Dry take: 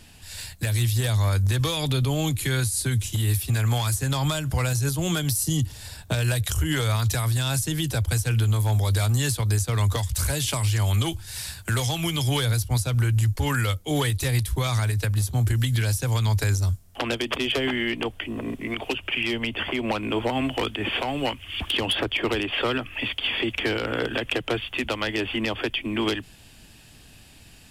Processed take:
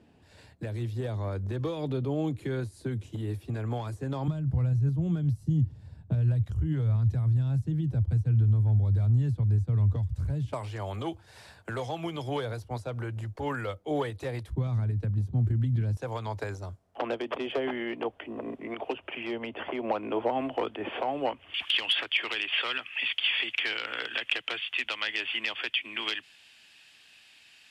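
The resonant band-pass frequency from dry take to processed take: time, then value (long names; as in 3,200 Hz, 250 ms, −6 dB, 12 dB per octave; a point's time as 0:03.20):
resonant band-pass, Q 1.1
370 Hz
from 0:04.28 140 Hz
from 0:10.53 570 Hz
from 0:14.50 190 Hz
from 0:15.97 630 Hz
from 0:21.54 2,600 Hz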